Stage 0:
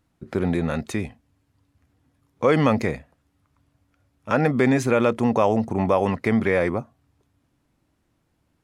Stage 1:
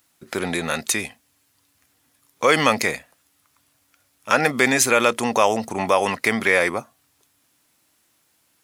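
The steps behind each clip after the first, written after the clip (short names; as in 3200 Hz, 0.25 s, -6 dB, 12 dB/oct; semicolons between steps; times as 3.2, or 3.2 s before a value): tilt +4.5 dB/oct; gain +4.5 dB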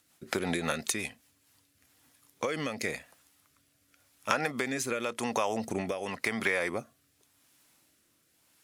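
compressor 12:1, threshold -24 dBFS, peak gain reduction 13.5 dB; rotary speaker horn 5.5 Hz, later 0.9 Hz, at 1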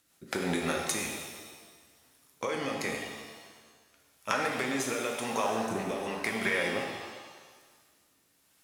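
shimmer reverb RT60 1.5 s, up +7 st, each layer -8 dB, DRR 0.5 dB; gain -2.5 dB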